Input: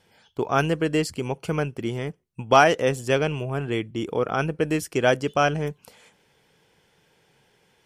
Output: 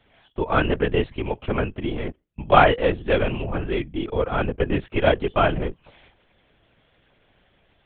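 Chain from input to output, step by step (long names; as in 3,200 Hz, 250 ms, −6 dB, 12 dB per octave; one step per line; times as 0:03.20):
stylus tracing distortion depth 0.025 ms
linear-prediction vocoder at 8 kHz whisper
level +1.5 dB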